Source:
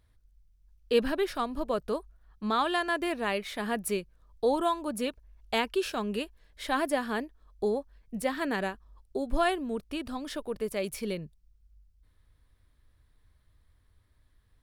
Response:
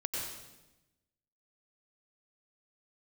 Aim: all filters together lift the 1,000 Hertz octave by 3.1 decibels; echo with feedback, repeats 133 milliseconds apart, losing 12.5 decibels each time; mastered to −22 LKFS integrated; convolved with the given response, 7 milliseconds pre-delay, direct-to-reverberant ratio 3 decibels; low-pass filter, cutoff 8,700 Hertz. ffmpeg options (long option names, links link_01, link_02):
-filter_complex "[0:a]lowpass=8700,equalizer=frequency=1000:width_type=o:gain=4,aecho=1:1:133|266|399:0.237|0.0569|0.0137,asplit=2[link_01][link_02];[1:a]atrim=start_sample=2205,adelay=7[link_03];[link_02][link_03]afir=irnorm=-1:irlink=0,volume=-6.5dB[link_04];[link_01][link_04]amix=inputs=2:normalize=0,volume=6.5dB"